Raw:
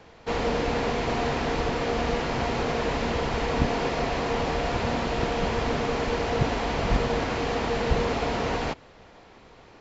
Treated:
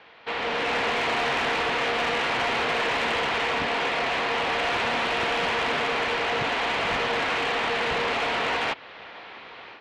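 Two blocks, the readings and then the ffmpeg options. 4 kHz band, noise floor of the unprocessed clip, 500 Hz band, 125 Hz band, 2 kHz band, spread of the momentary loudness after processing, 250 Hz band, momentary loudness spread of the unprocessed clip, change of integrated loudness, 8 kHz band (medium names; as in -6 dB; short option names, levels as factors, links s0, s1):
+7.0 dB, -51 dBFS, -1.5 dB, -12.0 dB, +7.5 dB, 6 LU, -6.5 dB, 2 LU, +2.0 dB, no reading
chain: -filter_complex "[0:a]lowpass=f=3500:w=0.5412,lowpass=f=3500:w=1.3066,dynaudnorm=f=360:g=3:m=2.82,highpass=f=280:p=1,asplit=2[s0][s1];[s1]acompressor=threshold=0.0355:ratio=4,volume=0.841[s2];[s0][s2]amix=inputs=2:normalize=0,tiltshelf=f=900:g=-7.5,asoftclip=type=tanh:threshold=0.178,volume=0.596"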